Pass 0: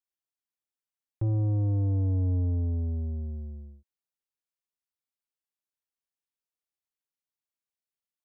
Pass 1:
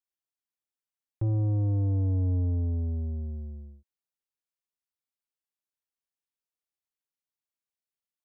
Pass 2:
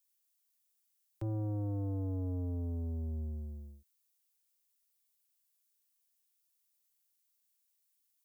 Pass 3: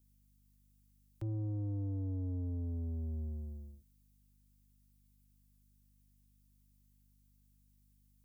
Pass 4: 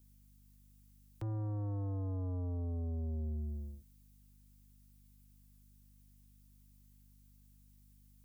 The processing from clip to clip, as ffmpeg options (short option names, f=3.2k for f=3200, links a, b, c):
-af anull
-filter_complex "[0:a]acrossover=split=180|400[a][b][c];[a]alimiter=level_in=6.5dB:limit=-24dB:level=0:latency=1,volume=-6.5dB[d];[d][b][c]amix=inputs=3:normalize=0,crystalizer=i=7:c=0,volume=-4.5dB"
-filter_complex "[0:a]aeval=exprs='val(0)+0.000447*(sin(2*PI*50*n/s)+sin(2*PI*2*50*n/s)/2+sin(2*PI*3*50*n/s)/3+sin(2*PI*4*50*n/s)/4+sin(2*PI*5*50*n/s)/5)':c=same,acrossover=split=380[a][b];[b]acompressor=threshold=-59dB:ratio=5[c];[a][c]amix=inputs=2:normalize=0,volume=-1dB"
-af "aeval=exprs='0.0266*(cos(1*acos(clip(val(0)/0.0266,-1,1)))-cos(1*PI/2))+0.00531*(cos(5*acos(clip(val(0)/0.0266,-1,1)))-cos(5*PI/2))':c=same"